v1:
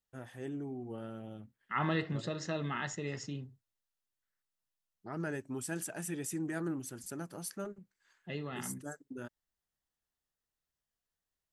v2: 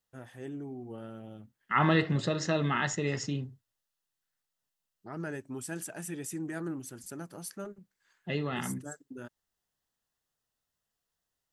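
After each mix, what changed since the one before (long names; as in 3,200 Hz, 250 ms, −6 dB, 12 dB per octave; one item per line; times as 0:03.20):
second voice +7.5 dB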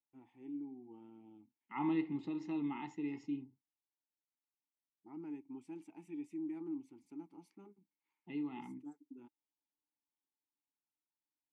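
master: add formant filter u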